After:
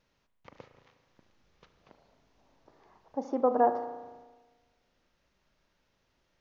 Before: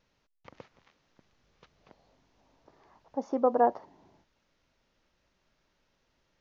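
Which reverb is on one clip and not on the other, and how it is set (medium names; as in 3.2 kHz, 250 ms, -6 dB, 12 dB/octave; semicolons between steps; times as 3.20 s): spring tank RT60 1.3 s, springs 36 ms, chirp 50 ms, DRR 8 dB; trim -1 dB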